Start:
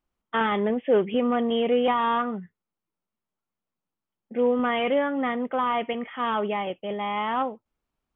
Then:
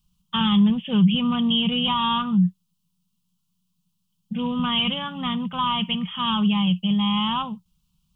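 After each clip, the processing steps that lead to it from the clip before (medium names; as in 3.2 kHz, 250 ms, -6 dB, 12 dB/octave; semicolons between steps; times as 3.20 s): FFT filter 120 Hz 0 dB, 180 Hz +12 dB, 290 Hz -26 dB, 650 Hz -30 dB, 1 kHz -10 dB, 2 kHz -24 dB, 2.9 kHz +1 dB; in parallel at +1 dB: peak limiter -30 dBFS, peak gain reduction 10 dB; on the sum: trim +8 dB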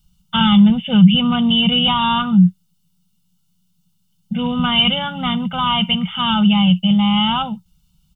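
comb 1.4 ms, depth 89%; trim +5.5 dB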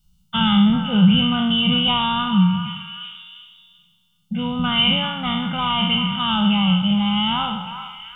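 spectral sustain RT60 0.91 s; repeats whose band climbs or falls 386 ms, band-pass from 1.2 kHz, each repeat 0.7 oct, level -8.5 dB; trim -5 dB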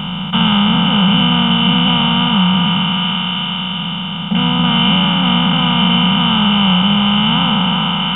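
spectral levelling over time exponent 0.2; trim -3 dB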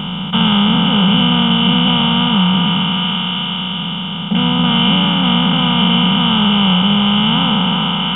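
small resonant body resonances 350/3300 Hz, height 12 dB, ringing for 30 ms; trim -1.5 dB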